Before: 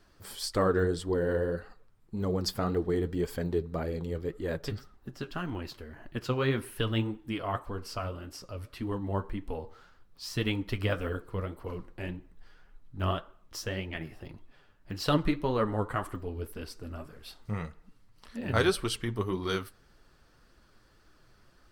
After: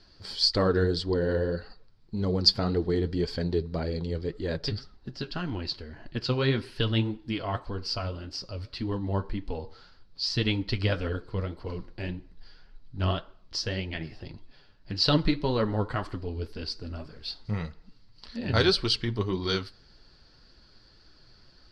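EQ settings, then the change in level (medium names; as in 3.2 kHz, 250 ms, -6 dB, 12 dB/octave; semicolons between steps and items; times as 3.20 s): resonant low-pass 4.6 kHz, resonance Q 6.2; bass shelf 320 Hz +4.5 dB; band-stop 1.2 kHz, Q 12; 0.0 dB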